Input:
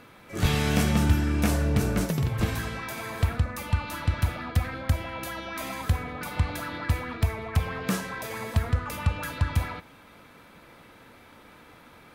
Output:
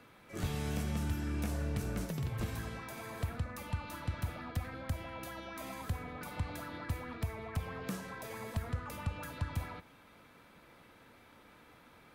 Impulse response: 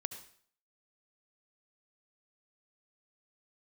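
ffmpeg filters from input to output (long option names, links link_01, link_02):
-filter_complex "[0:a]acrossover=split=110|1100|6000[link_01][link_02][link_03][link_04];[link_01]acompressor=threshold=-28dB:ratio=4[link_05];[link_02]acompressor=threshold=-29dB:ratio=4[link_06];[link_03]acompressor=threshold=-41dB:ratio=4[link_07];[link_04]acompressor=threshold=-43dB:ratio=4[link_08];[link_05][link_06][link_07][link_08]amix=inputs=4:normalize=0,volume=-8dB"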